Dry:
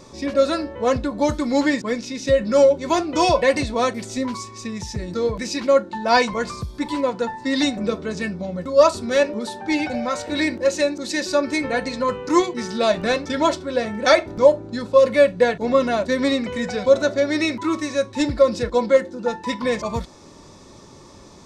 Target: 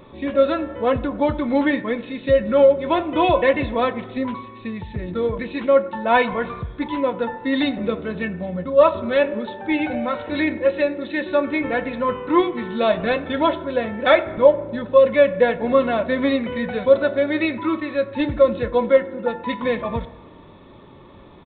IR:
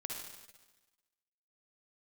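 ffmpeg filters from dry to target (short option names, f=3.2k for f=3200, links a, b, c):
-filter_complex "[0:a]asplit=2[a][b];[1:a]atrim=start_sample=2205,lowpass=2.2k,adelay=22[c];[b][c]afir=irnorm=-1:irlink=0,volume=-11.5dB[d];[a][d]amix=inputs=2:normalize=0,aresample=8000,aresample=44100"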